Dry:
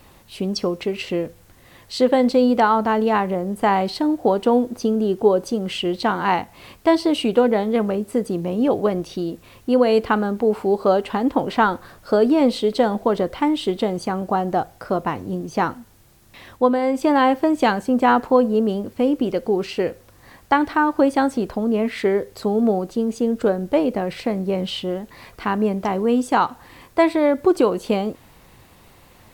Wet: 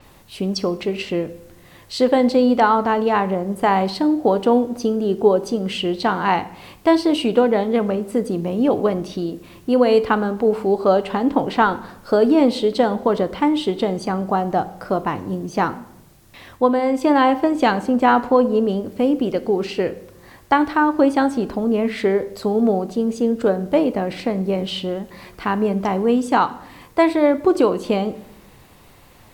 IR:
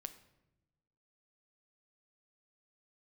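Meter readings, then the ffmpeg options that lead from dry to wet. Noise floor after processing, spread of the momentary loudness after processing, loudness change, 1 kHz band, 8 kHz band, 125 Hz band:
−48 dBFS, 9 LU, +1.0 dB, +1.0 dB, can't be measured, +1.5 dB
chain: -filter_complex "[0:a]asplit=2[link_01][link_02];[1:a]atrim=start_sample=2205[link_03];[link_02][link_03]afir=irnorm=-1:irlink=0,volume=9.5dB[link_04];[link_01][link_04]amix=inputs=2:normalize=0,adynamicequalizer=threshold=0.0141:dfrequency=7900:dqfactor=0.7:tfrequency=7900:tqfactor=0.7:attack=5:release=100:ratio=0.375:range=2.5:mode=cutabove:tftype=highshelf,volume=-8dB"

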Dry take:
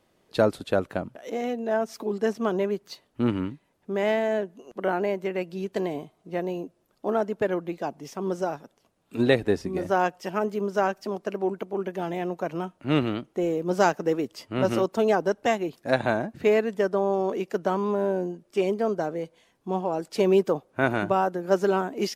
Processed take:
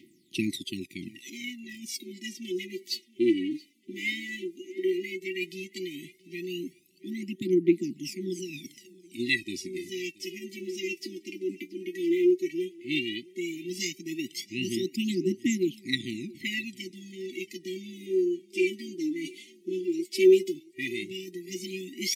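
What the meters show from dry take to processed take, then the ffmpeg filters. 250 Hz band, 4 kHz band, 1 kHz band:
−1.0 dB, +5.0 dB, below −40 dB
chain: -af "aphaser=in_gain=1:out_gain=1:delay=3.5:decay=0.8:speed=0.13:type=triangular,areverse,acompressor=mode=upward:threshold=-24dB:ratio=2.5,areverse,highpass=300,aecho=1:1:677|1354:0.0708|0.0205,afftfilt=real='re*(1-between(b*sr/4096,380,1900))':imag='im*(1-between(b*sr/4096,380,1900))':win_size=4096:overlap=0.75"

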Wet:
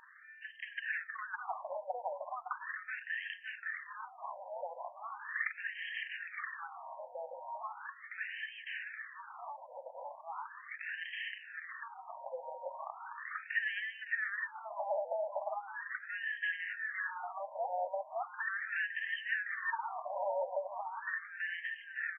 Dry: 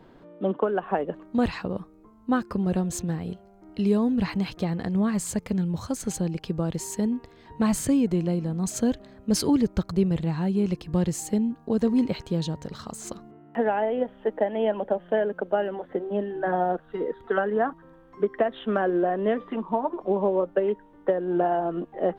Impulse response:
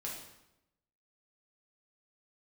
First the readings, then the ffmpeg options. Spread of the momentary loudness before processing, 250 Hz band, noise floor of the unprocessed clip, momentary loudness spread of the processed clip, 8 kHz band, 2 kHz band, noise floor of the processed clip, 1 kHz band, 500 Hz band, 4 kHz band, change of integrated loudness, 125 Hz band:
8 LU, below −40 dB, −53 dBFS, 11 LU, below −40 dB, +2.5 dB, −55 dBFS, −9.5 dB, −17.0 dB, −8.5 dB, −13.5 dB, below −40 dB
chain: -filter_complex "[0:a]agate=range=-33dB:threshold=-44dB:ratio=3:detection=peak,aemphasis=mode=production:type=bsi,acrossover=split=330|1600|4200[link_01][link_02][link_03][link_04];[link_04]acrusher=bits=4:mix=0:aa=0.000001[link_05];[link_01][link_02][link_03][link_05]amix=inputs=4:normalize=0,aeval=exprs='val(0)+0.0112*(sin(2*PI*60*n/s)+sin(2*PI*2*60*n/s)/2+sin(2*PI*3*60*n/s)/3+sin(2*PI*4*60*n/s)/4+sin(2*PI*5*60*n/s)/5)':channel_layout=same,aecho=1:1:561|1122|1683|2244|2805|3366:0.562|0.287|0.146|0.0746|0.038|0.0194,flanger=delay=3.2:depth=1.8:regen=-81:speed=0.63:shape=sinusoidal,asoftclip=type=tanh:threshold=-27.5dB,acompressor=threshold=-38dB:ratio=6,equalizer=frequency=1800:width_type=o:width=0.23:gain=12.5,acrossover=split=130|3000[link_06][link_07][link_08];[link_07]acompressor=threshold=-51dB:ratio=3[link_09];[link_06][link_09][link_08]amix=inputs=3:normalize=0,afftfilt=real='re*between(b*sr/1024,690*pow(2300/690,0.5+0.5*sin(2*PI*0.38*pts/sr))/1.41,690*pow(2300/690,0.5+0.5*sin(2*PI*0.38*pts/sr))*1.41)':imag='im*between(b*sr/1024,690*pow(2300/690,0.5+0.5*sin(2*PI*0.38*pts/sr))/1.41,690*pow(2300/690,0.5+0.5*sin(2*PI*0.38*pts/sr))*1.41)':win_size=1024:overlap=0.75,volume=17.5dB"

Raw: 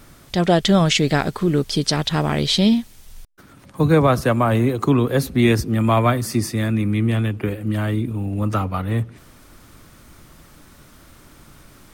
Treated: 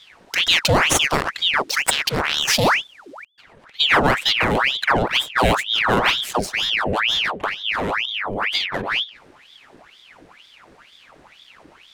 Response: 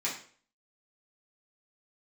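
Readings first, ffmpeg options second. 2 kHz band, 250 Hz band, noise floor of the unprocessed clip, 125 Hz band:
+9.5 dB, −10.0 dB, −48 dBFS, −10.5 dB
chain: -af "adynamicsmooth=sensitivity=4.5:basefreq=2900,aemphasis=mode=production:type=cd,aeval=exprs='val(0)*sin(2*PI*1900*n/s+1900*0.85/2.1*sin(2*PI*2.1*n/s))':channel_layout=same,volume=1.5dB"

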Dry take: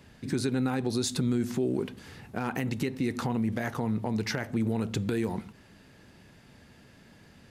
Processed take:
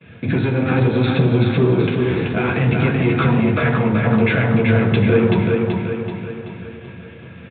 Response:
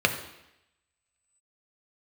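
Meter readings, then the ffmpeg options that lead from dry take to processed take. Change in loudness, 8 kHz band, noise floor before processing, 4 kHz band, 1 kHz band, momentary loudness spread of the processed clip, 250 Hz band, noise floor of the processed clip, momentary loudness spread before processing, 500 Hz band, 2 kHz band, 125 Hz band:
+13.5 dB, below −40 dB, −56 dBFS, +8.0 dB, +13.0 dB, 14 LU, +12.0 dB, −39 dBFS, 6 LU, +15.5 dB, +16.5 dB, +17.0 dB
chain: -filter_complex "[0:a]flanger=delay=6.4:depth=8.8:regen=55:speed=1.1:shape=sinusoidal,asplit=2[link_01][link_02];[link_02]acompressor=threshold=-41dB:ratio=6,volume=3dB[link_03];[link_01][link_03]amix=inputs=2:normalize=0,agate=range=-33dB:threshold=-44dB:ratio=3:detection=peak,asoftclip=type=tanh:threshold=-29dB,asplit=2[link_04][link_05];[link_05]adelay=22,volume=-14dB[link_06];[link_04][link_06]amix=inputs=2:normalize=0,aecho=1:1:381|762|1143|1524|1905|2286|2667:0.668|0.334|0.167|0.0835|0.0418|0.0209|0.0104[link_07];[1:a]atrim=start_sample=2205,asetrate=41895,aresample=44100[link_08];[link_07][link_08]afir=irnorm=-1:irlink=0,aresample=8000,aresample=44100,volume=2.5dB"

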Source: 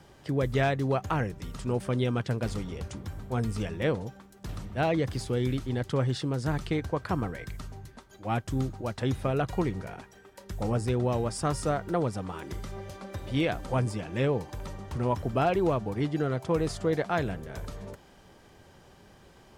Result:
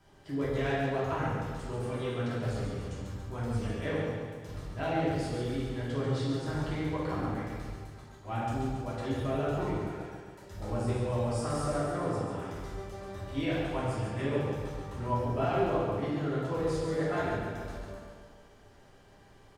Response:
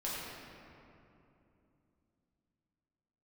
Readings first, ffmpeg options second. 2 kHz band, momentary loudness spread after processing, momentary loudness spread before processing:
−2.5 dB, 11 LU, 14 LU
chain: -filter_complex "[0:a]aecho=1:1:140|280|420|560|700|840|980|1120:0.501|0.291|0.169|0.0978|0.0567|0.0329|0.0191|0.0111[link_01];[1:a]atrim=start_sample=2205,afade=type=out:start_time=0.42:duration=0.01,atrim=end_sample=18963,asetrate=79380,aresample=44100[link_02];[link_01][link_02]afir=irnorm=-1:irlink=0,volume=-3dB"

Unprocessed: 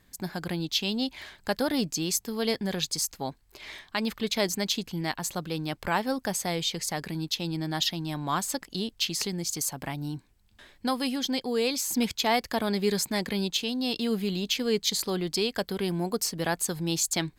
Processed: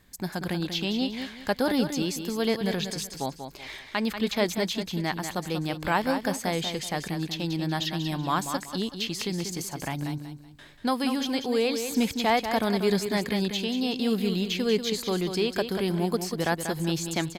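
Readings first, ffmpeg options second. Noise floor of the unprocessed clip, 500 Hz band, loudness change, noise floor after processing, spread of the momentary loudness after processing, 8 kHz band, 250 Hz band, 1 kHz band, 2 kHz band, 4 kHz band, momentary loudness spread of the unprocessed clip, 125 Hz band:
−62 dBFS, +2.5 dB, +1.0 dB, −47 dBFS, 8 LU, −5.5 dB, +2.5 dB, +2.5 dB, +2.0 dB, −1.5 dB, 7 LU, +2.5 dB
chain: -filter_complex "[0:a]acrossover=split=2900[link_01][link_02];[link_02]acompressor=threshold=-35dB:ratio=4:attack=1:release=60[link_03];[link_01][link_03]amix=inputs=2:normalize=0,asplit=2[link_04][link_05];[link_05]aecho=0:1:189|378|567|756:0.398|0.119|0.0358|0.0107[link_06];[link_04][link_06]amix=inputs=2:normalize=0,volume=2dB"

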